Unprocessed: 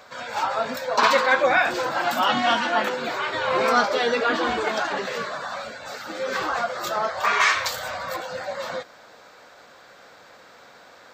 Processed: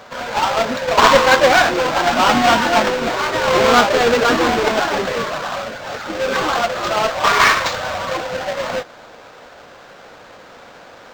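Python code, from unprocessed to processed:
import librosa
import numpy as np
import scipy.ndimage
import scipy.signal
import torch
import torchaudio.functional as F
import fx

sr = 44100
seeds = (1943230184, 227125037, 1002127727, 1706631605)

y = fx.halfwave_hold(x, sr)
y = np.interp(np.arange(len(y)), np.arange(len(y))[::4], y[::4])
y = F.gain(torch.from_numpy(y), 4.0).numpy()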